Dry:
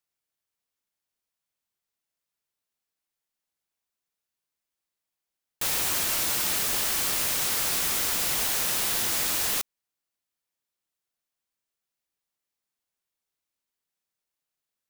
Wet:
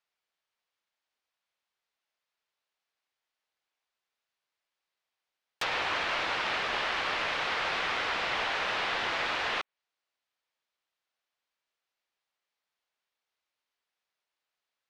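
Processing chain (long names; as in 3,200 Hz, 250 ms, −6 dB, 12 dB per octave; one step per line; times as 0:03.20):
three-way crossover with the lows and the highs turned down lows −13 dB, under 450 Hz, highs −19 dB, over 4,900 Hz
treble cut that deepens with the level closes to 2,700 Hz, closed at −33 dBFS
level +5.5 dB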